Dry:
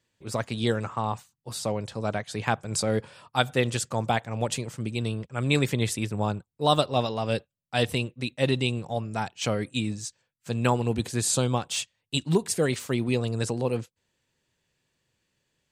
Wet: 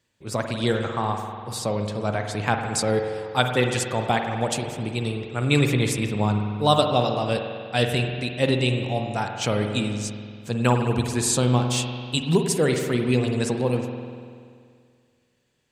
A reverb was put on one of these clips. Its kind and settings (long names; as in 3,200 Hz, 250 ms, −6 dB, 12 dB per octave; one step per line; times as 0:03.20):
spring reverb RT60 2.1 s, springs 48 ms, chirp 55 ms, DRR 4 dB
level +2.5 dB